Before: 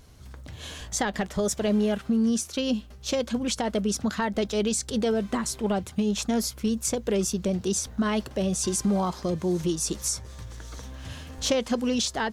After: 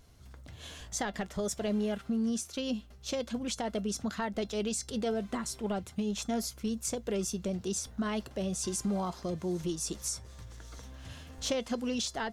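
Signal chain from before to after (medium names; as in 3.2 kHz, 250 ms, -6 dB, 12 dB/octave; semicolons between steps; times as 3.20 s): feedback comb 690 Hz, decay 0.16 s, harmonics all, mix 60%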